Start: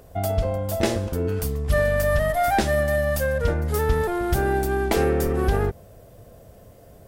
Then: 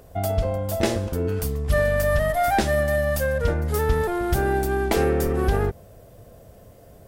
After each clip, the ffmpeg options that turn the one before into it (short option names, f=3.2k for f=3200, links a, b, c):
-af anull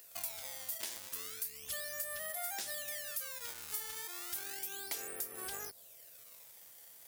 -filter_complex "[0:a]acrossover=split=720[a][b];[a]acrusher=samples=19:mix=1:aa=0.000001:lfo=1:lforange=30.4:lforate=0.33[c];[c][b]amix=inputs=2:normalize=0,aderivative,acompressor=threshold=-40dB:ratio=4,volume=2dB"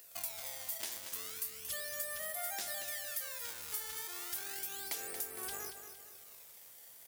-af "aecho=1:1:230|460|690|920|1150:0.355|0.156|0.0687|0.0302|0.0133"